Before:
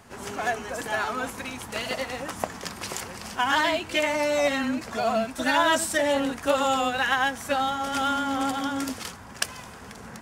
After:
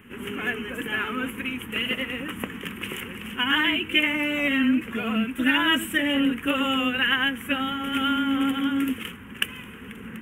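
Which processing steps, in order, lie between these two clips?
drawn EQ curve 130 Hz 0 dB, 230 Hz +8 dB, 470 Hz +1 dB, 670 Hz −17 dB, 1,200 Hz −2 dB, 3,000 Hz +9 dB, 4,400 Hz −29 dB, 12,000 Hz +2 dB

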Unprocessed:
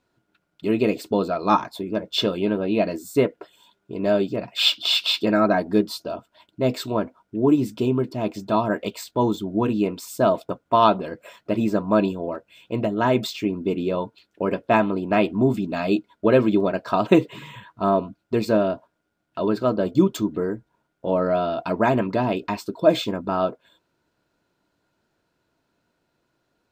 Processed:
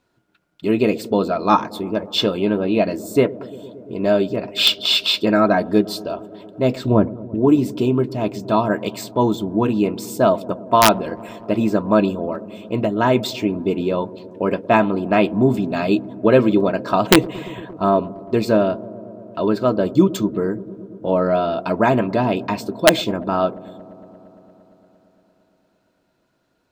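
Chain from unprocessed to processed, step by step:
wrap-around overflow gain 5 dB
0:06.76–0:07.35: spectral tilt −3.5 dB per octave
on a send: delay with a low-pass on its return 115 ms, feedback 83%, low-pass 630 Hz, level −18 dB
on the sum: level +3.5 dB

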